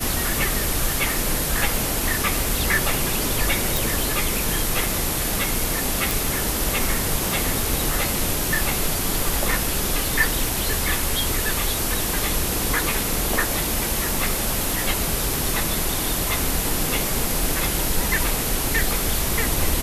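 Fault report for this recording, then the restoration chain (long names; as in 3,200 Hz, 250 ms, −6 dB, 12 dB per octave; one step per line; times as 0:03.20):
0:03.77: click
0:06.11: click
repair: click removal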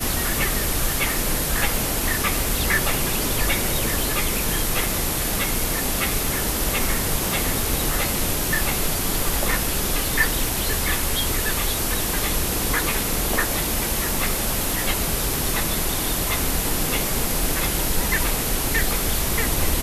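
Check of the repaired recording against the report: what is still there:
none of them is left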